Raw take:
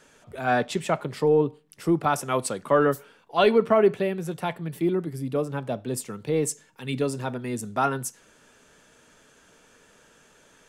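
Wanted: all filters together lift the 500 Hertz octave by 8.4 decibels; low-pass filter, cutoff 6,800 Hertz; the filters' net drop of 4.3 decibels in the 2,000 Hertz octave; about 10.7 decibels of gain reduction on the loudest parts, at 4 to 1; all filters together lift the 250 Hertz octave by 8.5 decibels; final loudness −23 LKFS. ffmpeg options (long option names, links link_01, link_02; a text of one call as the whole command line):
ffmpeg -i in.wav -af "lowpass=6800,equalizer=frequency=250:width_type=o:gain=8.5,equalizer=frequency=500:width_type=o:gain=8,equalizer=frequency=2000:width_type=o:gain=-7.5,acompressor=threshold=-19dB:ratio=4,volume=2dB" out.wav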